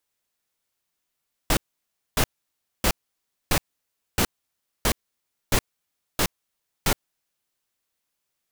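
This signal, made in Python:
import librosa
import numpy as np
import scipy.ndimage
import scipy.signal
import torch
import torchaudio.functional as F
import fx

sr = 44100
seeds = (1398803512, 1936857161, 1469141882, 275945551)

y = fx.noise_burst(sr, seeds[0], colour='pink', on_s=0.07, off_s=0.6, bursts=9, level_db=-20.0)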